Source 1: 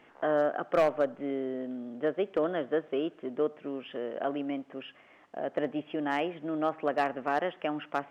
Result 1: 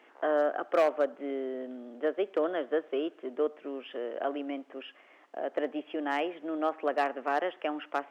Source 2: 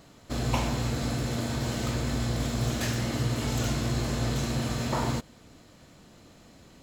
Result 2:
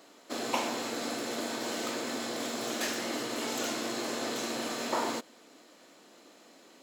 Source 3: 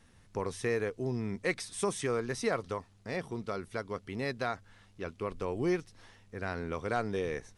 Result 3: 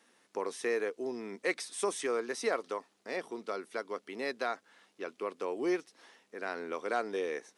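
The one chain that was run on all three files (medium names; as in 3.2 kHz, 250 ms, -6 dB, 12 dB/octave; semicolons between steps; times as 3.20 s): high-pass 280 Hz 24 dB/octave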